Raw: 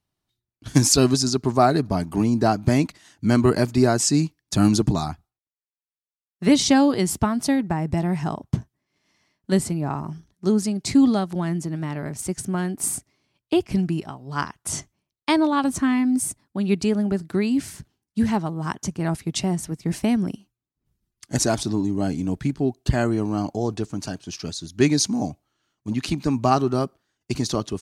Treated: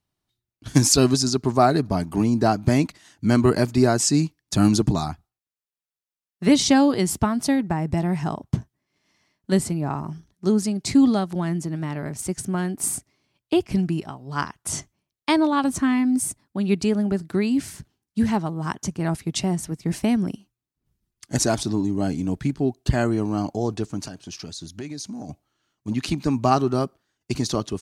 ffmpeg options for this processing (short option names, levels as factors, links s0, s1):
-filter_complex "[0:a]asettb=1/sr,asplit=3[s0][s1][s2];[s0]atrim=end=24.074[s3];[s1]atrim=start=24.07:end=25.29,asetpts=PTS-STARTPTS,afade=t=in:d=0.004:c=qsin,afade=t=out:st=1.216:d=0.004:c=qsin,acompressor=threshold=0.0282:ratio=6:attack=3.2:release=140:knee=1:detection=peak[s4];[s2]atrim=start=25.286[s5];[s3][s4]acrossfade=d=0.004:c1=hsin:c2=qsin[s6];[s6][s5]acrossfade=d=0.004:c1=qsin:c2=hsin"